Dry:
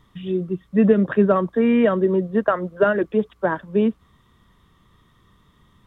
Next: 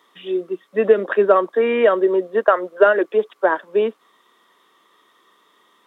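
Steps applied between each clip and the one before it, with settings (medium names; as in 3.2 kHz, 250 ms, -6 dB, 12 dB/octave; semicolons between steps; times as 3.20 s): high-pass 360 Hz 24 dB/octave; trim +5 dB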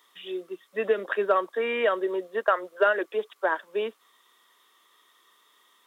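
tilt EQ +3 dB/octave; trim -7 dB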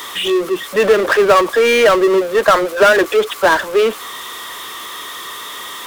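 power-law waveshaper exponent 0.5; trim +7.5 dB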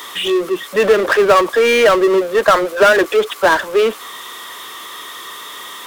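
crossover distortion -40.5 dBFS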